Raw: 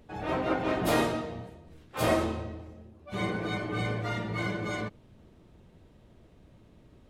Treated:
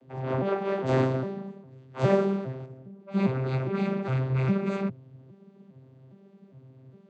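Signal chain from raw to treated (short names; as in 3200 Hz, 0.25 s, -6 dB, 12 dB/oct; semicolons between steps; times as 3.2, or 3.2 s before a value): arpeggiated vocoder bare fifth, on C3, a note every 0.407 s; 0.49–0.9 low shelf 220 Hz -9 dB; 2.01–2.66 mismatched tape noise reduction encoder only; gain +5 dB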